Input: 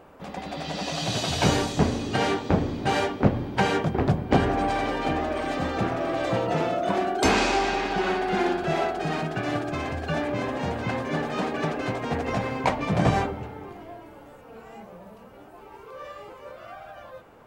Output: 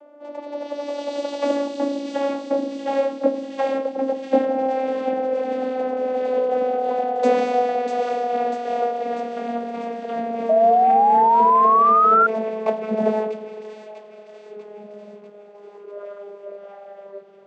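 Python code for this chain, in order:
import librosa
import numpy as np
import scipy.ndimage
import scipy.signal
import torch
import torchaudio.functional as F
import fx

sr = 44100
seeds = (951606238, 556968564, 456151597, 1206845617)

p1 = fx.vocoder_glide(x, sr, note=62, semitones=-7)
p2 = fx.band_shelf(p1, sr, hz=530.0, db=11.0, octaves=1.1)
p3 = p2 + fx.echo_wet_highpass(p2, sr, ms=644, feedback_pct=59, hz=3000.0, wet_db=-3.5, dry=0)
p4 = fx.spec_paint(p3, sr, seeds[0], shape='rise', start_s=10.49, length_s=1.78, low_hz=640.0, high_hz=1400.0, level_db=-14.0)
y = fx.low_shelf(p4, sr, hz=340.0, db=-6.0)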